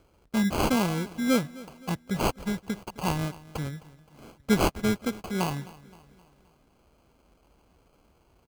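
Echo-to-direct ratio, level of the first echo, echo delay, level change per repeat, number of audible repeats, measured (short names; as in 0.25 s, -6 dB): -19.0 dB, -20.0 dB, 0.261 s, -6.0 dB, 3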